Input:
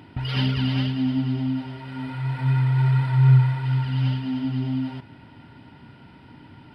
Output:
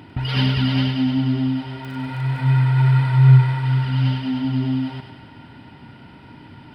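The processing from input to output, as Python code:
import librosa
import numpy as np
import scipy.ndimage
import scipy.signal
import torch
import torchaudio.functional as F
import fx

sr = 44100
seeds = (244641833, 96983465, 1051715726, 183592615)

y = fx.dmg_crackle(x, sr, seeds[0], per_s=22.0, level_db=-36.0, at=(1.79, 2.4), fade=0.02)
y = fx.echo_thinned(y, sr, ms=99, feedback_pct=62, hz=420.0, wet_db=-7)
y = y * 10.0 ** (4.0 / 20.0)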